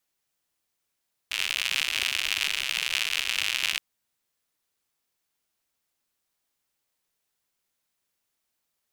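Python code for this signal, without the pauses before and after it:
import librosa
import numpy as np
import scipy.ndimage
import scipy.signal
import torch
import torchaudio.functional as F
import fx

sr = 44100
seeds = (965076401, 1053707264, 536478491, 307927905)

y = fx.rain(sr, seeds[0], length_s=2.47, drops_per_s=120.0, hz=2700.0, bed_db=-28.0)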